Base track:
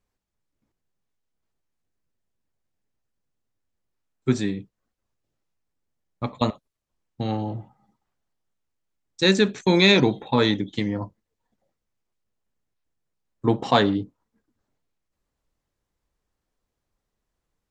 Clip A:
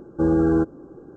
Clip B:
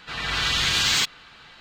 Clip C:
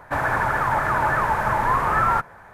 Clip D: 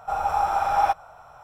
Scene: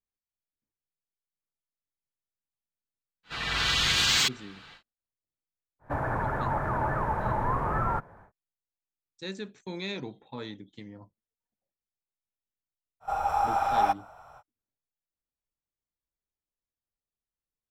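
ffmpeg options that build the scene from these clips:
-filter_complex "[0:a]volume=-19.5dB[a];[3:a]tiltshelf=f=1.2k:g=9[b];[2:a]atrim=end=1.6,asetpts=PTS-STARTPTS,volume=-2.5dB,afade=t=in:d=0.1,afade=t=out:st=1.5:d=0.1,adelay=3230[c];[b]atrim=end=2.53,asetpts=PTS-STARTPTS,volume=-10.5dB,afade=t=in:d=0.1,afade=t=out:st=2.43:d=0.1,adelay=5790[d];[4:a]atrim=end=1.43,asetpts=PTS-STARTPTS,volume=-3.5dB,afade=t=in:d=0.05,afade=t=out:st=1.38:d=0.05,adelay=573300S[e];[a][c][d][e]amix=inputs=4:normalize=0"

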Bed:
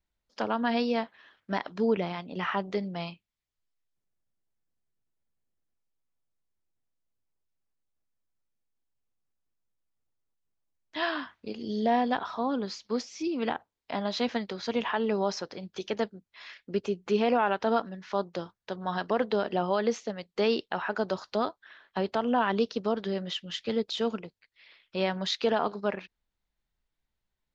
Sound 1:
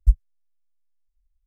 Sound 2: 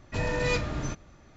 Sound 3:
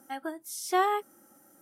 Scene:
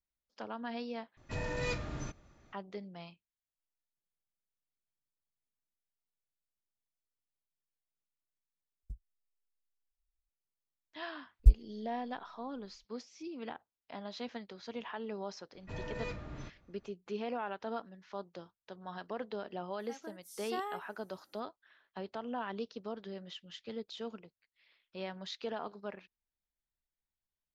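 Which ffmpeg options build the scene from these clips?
-filter_complex "[2:a]asplit=2[a][b];[1:a]asplit=2[c][d];[0:a]volume=-13dB[e];[c]acompressor=threshold=-22dB:ratio=6:attack=3.2:release=140:knee=1:detection=peak[f];[d]alimiter=limit=-8.5dB:level=0:latency=1:release=71[g];[b]lowpass=f=2.7k:p=1[h];[e]asplit=3[i][j][k];[i]atrim=end=1.174[l];[a]atrim=end=1.36,asetpts=PTS-STARTPTS,volume=-8.5dB[m];[j]atrim=start=2.526:end=8.834[n];[f]atrim=end=1.46,asetpts=PTS-STARTPTS,volume=-17dB[o];[k]atrim=start=10.286[p];[g]atrim=end=1.46,asetpts=PTS-STARTPTS,volume=-1.5dB,afade=t=in:d=0.004:c=hsin,afade=t=out:st=1.456:d=0.004:c=hsin,adelay=11390[q];[h]atrim=end=1.36,asetpts=PTS-STARTPTS,volume=-13dB,afade=t=in:d=0.004:c=hsin,afade=t=out:st=1.356:d=0.004:c=hsin,adelay=15550[r];[3:a]atrim=end=1.61,asetpts=PTS-STARTPTS,volume=-13.5dB,afade=t=in:d=0.004:c=hsin,afade=t=out:st=1.606:d=0.004:c=hsin,adelay=19790[s];[l][m]acrossfade=d=0.004:c1=hsin:c2=hsin[t];[t][n]acrossfade=d=0.004:c1=hsin:c2=hsin[u];[u][o]acrossfade=d=0.004:c1=hsin:c2=hsin[v];[v][p]acrossfade=d=0.004:c1=hsin:c2=hsin[w];[w][q][r][s]amix=inputs=4:normalize=0"

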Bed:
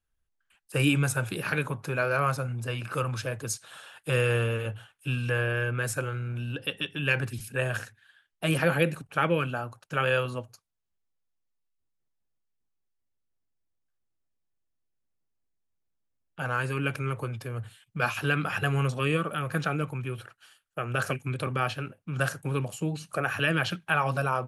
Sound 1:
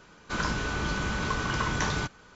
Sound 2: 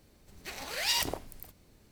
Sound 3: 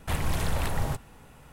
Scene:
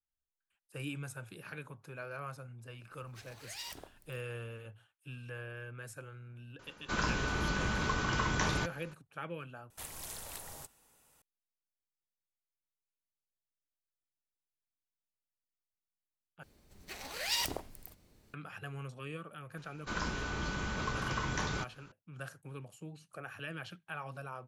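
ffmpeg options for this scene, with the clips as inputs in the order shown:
-filter_complex "[2:a]asplit=2[a][b];[1:a]asplit=2[c][d];[0:a]volume=-17dB[e];[3:a]bass=f=250:g=-10,treble=f=4k:g=15[f];[e]asplit=3[g][h][i];[g]atrim=end=9.704[j];[f]atrim=end=1.52,asetpts=PTS-STARTPTS,volume=-17.5dB[k];[h]atrim=start=11.216:end=16.434[l];[b]atrim=end=1.91,asetpts=PTS-STARTPTS,volume=-4dB[m];[i]atrim=start=18.336[n];[a]atrim=end=1.91,asetpts=PTS-STARTPTS,volume=-15.5dB,afade=t=in:d=0.004:c=hsin,afade=t=out:st=1.906:d=0.004:c=hsin,adelay=2700[o];[c]atrim=end=2.35,asetpts=PTS-STARTPTS,volume=-3.5dB,afade=t=in:d=0.004:c=hsin,afade=t=out:st=2.346:d=0.004:c=hsin,adelay=6590[p];[d]atrim=end=2.35,asetpts=PTS-STARTPTS,volume=-7dB,afade=t=in:d=0.004:c=hsin,afade=t=out:st=2.346:d=0.004:c=hsin,adelay=19570[q];[j][k]acrossfade=d=0.004:c1=hsin:c2=hsin[r];[r][l]acrossfade=d=0.004:c1=hsin:c2=hsin[s];[s][m]acrossfade=d=0.004:c1=hsin:c2=hsin[t];[t][n]acrossfade=d=0.004:c1=hsin:c2=hsin[u];[u][o][p][q]amix=inputs=4:normalize=0"

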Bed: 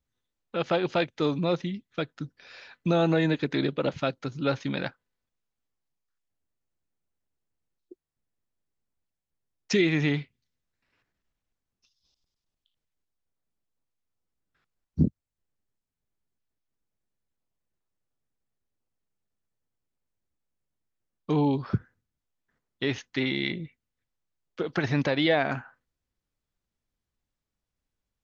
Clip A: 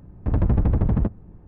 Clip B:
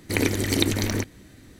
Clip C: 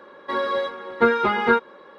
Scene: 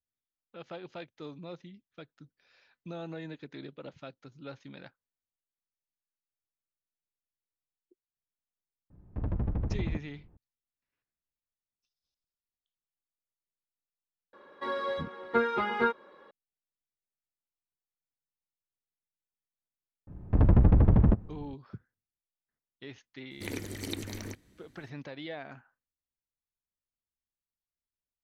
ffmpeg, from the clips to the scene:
-filter_complex "[1:a]asplit=2[a][b];[0:a]volume=-17.5dB[c];[a]atrim=end=1.47,asetpts=PTS-STARTPTS,volume=-12dB,afade=t=in:d=0.004:c=hsin,afade=t=out:st=1.466:d=0.004:c=hsin,adelay=392490S[d];[3:a]atrim=end=1.98,asetpts=PTS-STARTPTS,volume=-9dB,afade=t=in:d=0.004:c=hsin,afade=t=out:st=1.976:d=0.004:c=hsin,adelay=14330[e];[b]atrim=end=1.47,asetpts=PTS-STARTPTS,volume=-1dB,afade=t=in:d=0.004:c=hsin,afade=t=out:st=1.466:d=0.004:c=hsin,adelay=20070[f];[2:a]atrim=end=1.59,asetpts=PTS-STARTPTS,volume=-15dB,afade=t=in:d=0.004:c=hsin,afade=t=out:st=1.586:d=0.004:c=hsin,adelay=23310[g];[c][d][e][f][g]amix=inputs=5:normalize=0"

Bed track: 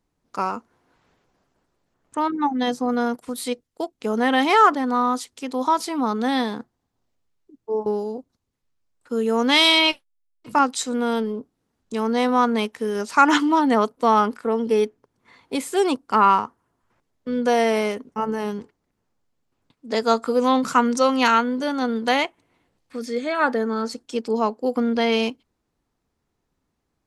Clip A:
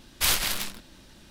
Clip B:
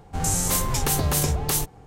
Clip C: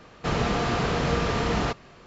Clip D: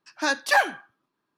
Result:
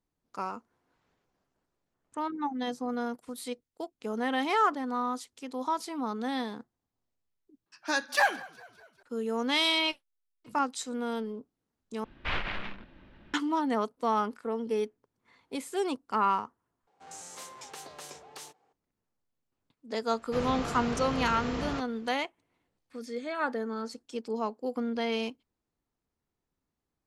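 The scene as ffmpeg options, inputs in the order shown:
-filter_complex "[0:a]volume=-10.5dB[a];[4:a]asplit=5[b][c][d][e][f];[c]adelay=201,afreqshift=-47,volume=-22dB[g];[d]adelay=402,afreqshift=-94,volume=-27.4dB[h];[e]adelay=603,afreqshift=-141,volume=-32.7dB[i];[f]adelay=804,afreqshift=-188,volume=-38.1dB[j];[b][g][h][i][j]amix=inputs=5:normalize=0[k];[1:a]lowpass=f=2.6k:w=0.5412,lowpass=f=2.6k:w=1.3066[l];[2:a]highpass=460,lowpass=6.7k[m];[a]asplit=4[n][o][p][q];[n]atrim=end=7.664[r];[k]atrim=end=1.37,asetpts=PTS-STARTPTS,volume=-5dB[s];[o]atrim=start=9.026:end=12.044[t];[l]atrim=end=1.3,asetpts=PTS-STARTPTS,volume=-2.5dB[u];[p]atrim=start=13.336:end=16.874[v];[m]atrim=end=1.86,asetpts=PTS-STARTPTS,volume=-16.5dB[w];[q]atrim=start=18.726[x];[3:a]atrim=end=2.06,asetpts=PTS-STARTPTS,volume=-10dB,afade=t=in:d=0.004:c=hsin,afade=t=out:st=2.056:d=0.004:c=hsin,adelay=20080[y];[r][s]acrossfade=d=0.004:c1=hsin:c2=hsin[z];[z][t]acrossfade=d=0.004:c1=hsin:c2=hsin[aa];[aa][u]acrossfade=d=0.004:c1=hsin:c2=hsin[ab];[ab][v]acrossfade=d=0.004:c1=hsin:c2=hsin[ac];[ac][w]acrossfade=d=0.004:c1=hsin:c2=hsin[ad];[ad][x]acrossfade=d=0.004:c1=hsin:c2=hsin[ae];[ae][y]amix=inputs=2:normalize=0"

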